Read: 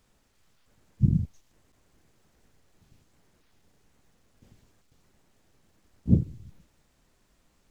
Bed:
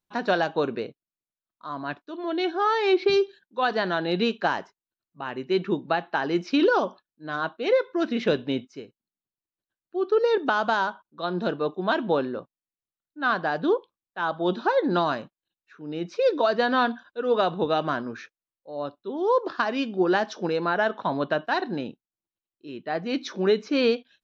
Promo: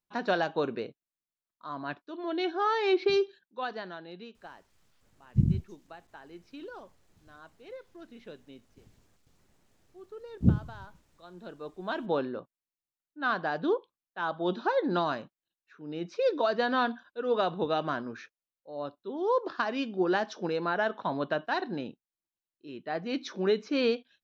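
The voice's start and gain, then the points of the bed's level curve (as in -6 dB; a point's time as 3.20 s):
4.35 s, -2.0 dB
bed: 3.34 s -4.5 dB
4.30 s -23.5 dB
11.18 s -23.5 dB
12.16 s -5 dB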